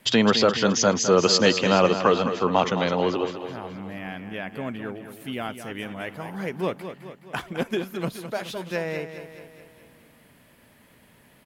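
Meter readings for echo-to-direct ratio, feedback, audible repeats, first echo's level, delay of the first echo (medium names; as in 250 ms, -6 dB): -8.5 dB, 55%, 5, -10.0 dB, 211 ms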